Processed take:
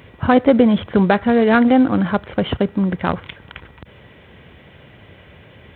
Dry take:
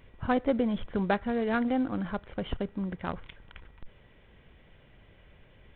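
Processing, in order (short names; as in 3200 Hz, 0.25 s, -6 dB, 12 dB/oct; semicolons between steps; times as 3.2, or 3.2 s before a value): HPF 71 Hz 24 dB/oct; maximiser +16 dB; gain -1 dB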